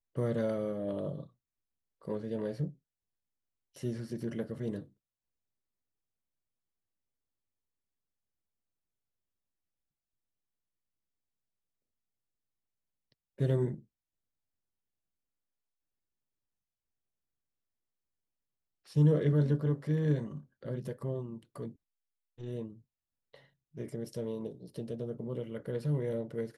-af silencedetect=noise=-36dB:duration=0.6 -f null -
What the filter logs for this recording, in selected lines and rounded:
silence_start: 1.23
silence_end: 2.08 | silence_duration: 0.85
silence_start: 2.68
silence_end: 3.83 | silence_duration: 1.16
silence_start: 4.79
silence_end: 13.40 | silence_duration: 8.61
silence_start: 13.75
silence_end: 18.96 | silence_duration: 5.22
silence_start: 21.68
silence_end: 22.43 | silence_duration: 0.75
silence_start: 22.67
silence_end: 23.78 | silence_duration: 1.11